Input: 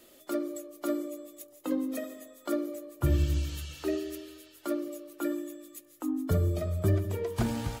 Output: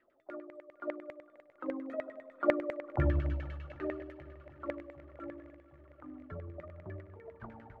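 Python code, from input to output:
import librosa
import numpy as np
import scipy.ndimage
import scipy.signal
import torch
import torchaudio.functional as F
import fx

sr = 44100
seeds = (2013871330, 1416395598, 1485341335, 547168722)

y = fx.doppler_pass(x, sr, speed_mps=7, closest_m=4.1, pass_at_s=2.88)
y = fx.filter_lfo_lowpass(y, sr, shape='saw_down', hz=10.0, low_hz=560.0, high_hz=2100.0, q=7.0)
y = fx.echo_swing(y, sr, ms=761, ratio=1.5, feedback_pct=67, wet_db=-22.0)
y = y * 10.0 ** (-3.5 / 20.0)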